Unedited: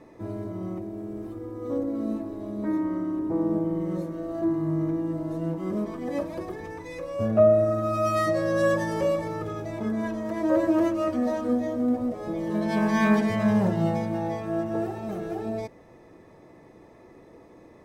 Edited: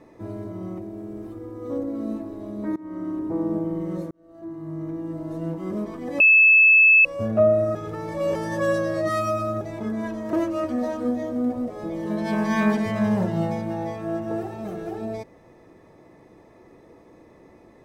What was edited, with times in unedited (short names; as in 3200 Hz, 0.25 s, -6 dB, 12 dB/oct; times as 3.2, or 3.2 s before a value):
2.76–3.08 fade in, from -23 dB
4.11–5.42 fade in
6.2–7.05 bleep 2610 Hz -10.5 dBFS
7.75–9.61 reverse
10.33–10.77 cut